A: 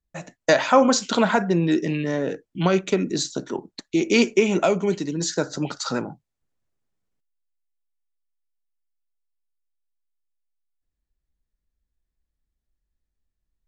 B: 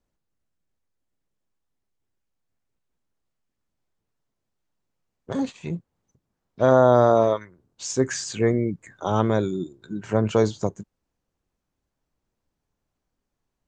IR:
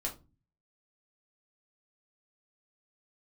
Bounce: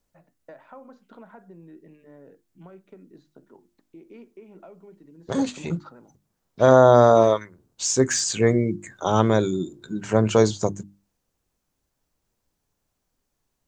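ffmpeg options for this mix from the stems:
-filter_complex "[0:a]lowpass=1400,acompressor=threshold=-25dB:ratio=2.5,volume=-10dB[link_01];[1:a]deesser=0.55,highshelf=frequency=5100:gain=9.5,volume=2.5dB,asplit=2[link_02][link_03];[link_03]apad=whole_len=603056[link_04];[link_01][link_04]sidechaingate=range=-10dB:threshold=-41dB:ratio=16:detection=peak[link_05];[link_05][link_02]amix=inputs=2:normalize=0,bandreject=frequency=50:width_type=h:width=6,bandreject=frequency=100:width_type=h:width=6,bandreject=frequency=150:width_type=h:width=6,bandreject=frequency=200:width_type=h:width=6,bandreject=frequency=250:width_type=h:width=6,bandreject=frequency=300:width_type=h:width=6,bandreject=frequency=350:width_type=h:width=6"

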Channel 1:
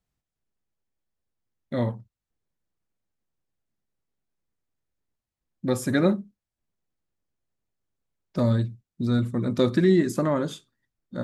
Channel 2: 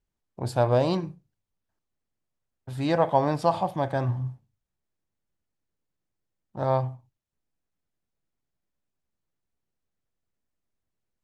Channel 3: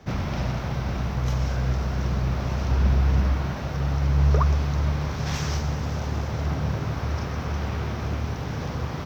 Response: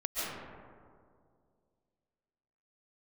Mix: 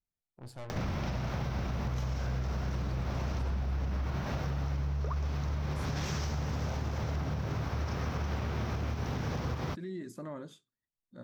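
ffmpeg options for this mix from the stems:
-filter_complex "[0:a]alimiter=limit=-14.5dB:level=0:latency=1:release=21,volume=-17.5dB[link_01];[1:a]aeval=exprs='(tanh(28.2*val(0)+0.65)-tanh(0.65))/28.2':channel_layout=same,volume=-12dB[link_02];[2:a]alimiter=limit=-21.5dB:level=0:latency=1:release=127,acompressor=mode=upward:threshold=-32dB:ratio=2.5,adelay=700,volume=2.5dB[link_03];[link_01][link_02][link_03]amix=inputs=3:normalize=0,acompressor=threshold=-33dB:ratio=2.5"

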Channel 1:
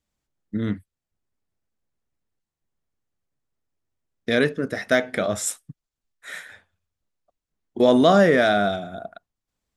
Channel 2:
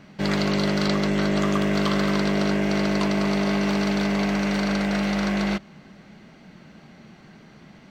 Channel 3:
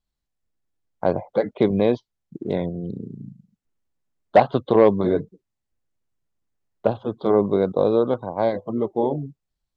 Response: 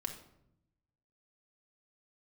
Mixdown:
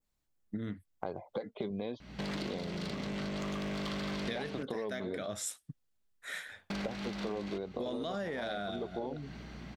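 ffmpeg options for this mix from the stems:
-filter_complex "[0:a]highshelf=frequency=5200:gain=-5.5,volume=-5dB[link_01];[1:a]alimiter=limit=-20dB:level=0:latency=1:release=105,asoftclip=type=tanh:threshold=-30dB,aeval=exprs='val(0)+0.00398*(sin(2*PI*60*n/s)+sin(2*PI*2*60*n/s)/2+sin(2*PI*3*60*n/s)/3+sin(2*PI*4*60*n/s)/4+sin(2*PI*5*60*n/s)/5)':channel_layout=same,adelay=2000,volume=-0.5dB,asplit=3[link_02][link_03][link_04];[link_02]atrim=end=4.63,asetpts=PTS-STARTPTS,afade=type=out:start_time=4.626:duration=0.004:curve=hsin[link_05];[link_03]atrim=start=4.63:end=6.7,asetpts=PTS-STARTPTS,volume=0[link_06];[link_04]atrim=start=6.7,asetpts=PTS-STARTPTS,afade=type=in:duration=0.004:curve=hsin[link_07];[link_05][link_06][link_07]concat=n=3:v=0:a=1[link_08];[2:a]alimiter=limit=-9dB:level=0:latency=1:release=248,flanger=delay=2.3:depth=2.8:regen=61:speed=0.91:shape=triangular,volume=-1dB[link_09];[link_01][link_09]amix=inputs=2:normalize=0,highshelf=frequency=8500:gain=8,alimiter=limit=-16dB:level=0:latency=1:release=39,volume=0dB[link_10];[link_08][link_10]amix=inputs=2:normalize=0,adynamicequalizer=threshold=0.00398:dfrequency=3700:dqfactor=1.1:tfrequency=3700:tqfactor=1.1:attack=5:release=100:ratio=0.375:range=3:mode=boostabove:tftype=bell,acompressor=threshold=-35dB:ratio=6"

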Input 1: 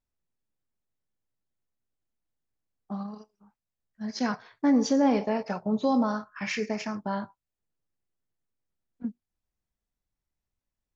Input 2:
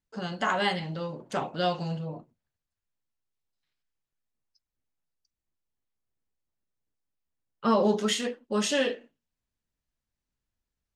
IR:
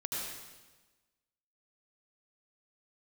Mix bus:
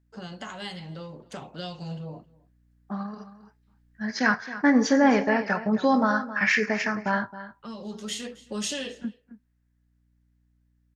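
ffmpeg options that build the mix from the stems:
-filter_complex "[0:a]equalizer=frequency=1700:width=1.9:gain=14.5,flanger=delay=4.9:depth=1.4:regen=-80:speed=0.59:shape=triangular,volume=1.5dB,asplit=3[link_01][link_02][link_03];[link_02]volume=-14.5dB[link_04];[1:a]acrossover=split=200|3000[link_05][link_06][link_07];[link_06]acompressor=threshold=-35dB:ratio=6[link_08];[link_05][link_08][link_07]amix=inputs=3:normalize=0,aeval=exprs='val(0)+0.000794*(sin(2*PI*60*n/s)+sin(2*PI*2*60*n/s)/2+sin(2*PI*3*60*n/s)/3+sin(2*PI*4*60*n/s)/4+sin(2*PI*5*60*n/s)/5)':channel_layout=same,volume=-3.5dB,asplit=2[link_09][link_10];[link_10]volume=-24dB[link_11];[link_03]apad=whole_len=483143[link_12];[link_09][link_12]sidechaincompress=threshold=-45dB:ratio=4:attack=27:release=1050[link_13];[link_04][link_11]amix=inputs=2:normalize=0,aecho=0:1:268:1[link_14];[link_01][link_13][link_14]amix=inputs=3:normalize=0,dynaudnorm=framelen=390:gausssize=13:maxgain=5.5dB"

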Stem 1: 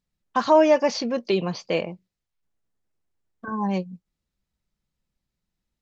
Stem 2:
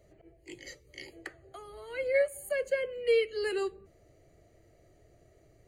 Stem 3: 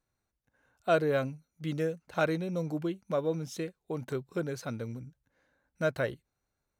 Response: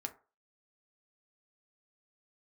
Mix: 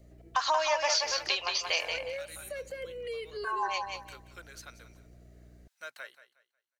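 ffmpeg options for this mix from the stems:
-filter_complex "[0:a]highpass=frequency=740:width=0.5412,highpass=frequency=740:width=1.3066,highshelf=frequency=2300:gain=11,acompressor=threshold=-23dB:ratio=6,volume=-1.5dB,asplit=3[link_01][link_02][link_03];[link_02]volume=-5dB[link_04];[1:a]aeval=exprs='val(0)+0.00224*(sin(2*PI*60*n/s)+sin(2*PI*2*60*n/s)/2+sin(2*PI*3*60*n/s)/3+sin(2*PI*4*60*n/s)/4+sin(2*PI*5*60*n/s)/5)':channel_layout=same,volume=-1dB[link_05];[2:a]highpass=1500,dynaudnorm=framelen=370:gausssize=7:maxgain=5.5dB,volume=-7dB,asplit=3[link_06][link_07][link_08];[link_06]atrim=end=3.31,asetpts=PTS-STARTPTS,afade=type=out:start_time=3.306:duration=0.004:curve=hsin[link_09];[link_07]atrim=start=3.31:end=3.93,asetpts=PTS-STARTPTS,volume=0[link_10];[link_08]atrim=start=3.93,asetpts=PTS-STARTPTS,afade=type=in:duration=0.004:curve=hsin[link_11];[link_09][link_10][link_11]concat=n=3:v=0:a=1,asplit=2[link_12][link_13];[link_13]volume=-15dB[link_14];[link_03]apad=whole_len=250269[link_15];[link_05][link_15]sidechaincompress=threshold=-42dB:ratio=8:attack=16:release=118[link_16];[link_16][link_12]amix=inputs=2:normalize=0,acrossover=split=310|3000[link_17][link_18][link_19];[link_18]acompressor=threshold=-35dB:ratio=6[link_20];[link_17][link_20][link_19]amix=inputs=3:normalize=0,alimiter=level_in=7dB:limit=-24dB:level=0:latency=1:release=100,volume=-7dB,volume=0dB[link_21];[link_04][link_14]amix=inputs=2:normalize=0,aecho=0:1:181|362|543|724:1|0.26|0.0676|0.0176[link_22];[link_01][link_21][link_22]amix=inputs=3:normalize=0"

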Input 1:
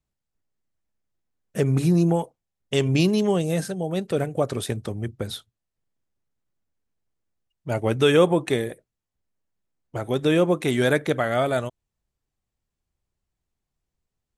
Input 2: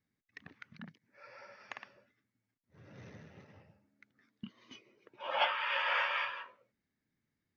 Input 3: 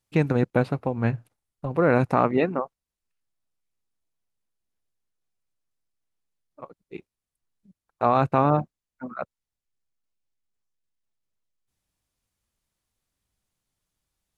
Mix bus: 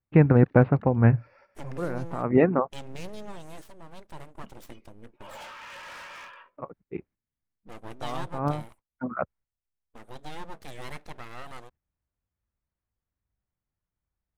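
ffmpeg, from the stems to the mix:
ffmpeg -i stem1.wav -i stem2.wav -i stem3.wav -filter_complex "[0:a]aeval=exprs='abs(val(0))':channel_layout=same,volume=-16.5dB,asplit=2[link_01][link_02];[1:a]highshelf=frequency=3300:gain=-9,asoftclip=type=hard:threshold=-37.5dB,volume=-3.5dB[link_03];[2:a]lowpass=frequency=2100:width=0.5412,lowpass=frequency=2100:width=1.3066,equalizer=frequency=62:width=0.61:gain=8,volume=2.5dB[link_04];[link_02]apad=whole_len=634115[link_05];[link_04][link_05]sidechaincompress=threshold=-50dB:ratio=8:attack=5.4:release=138[link_06];[link_01][link_03][link_06]amix=inputs=3:normalize=0,agate=range=-10dB:threshold=-54dB:ratio=16:detection=peak" out.wav

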